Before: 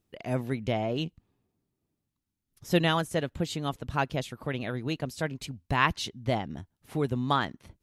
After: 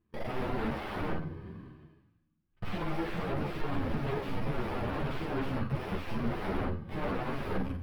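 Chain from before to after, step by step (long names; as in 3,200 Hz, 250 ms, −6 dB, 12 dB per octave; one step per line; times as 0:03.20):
samples in bit-reversed order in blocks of 32 samples
high-shelf EQ 10,000 Hz −5 dB
hum removal 90.18 Hz, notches 3
harmonic and percussive parts rebalanced percussive −13 dB
leveller curve on the samples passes 5
reversed playback
upward compression, threshold −38 dBFS
reversed playback
tube saturation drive 33 dB, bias 0.75
flutter between parallel walls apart 8 metres, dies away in 0.32 s
on a send at −23 dB: convolution reverb RT60 1.3 s, pre-delay 3 ms
on the sum: sine wavefolder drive 18 dB, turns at −25 dBFS
high-frequency loss of the air 470 metres
string-ensemble chorus
level +1 dB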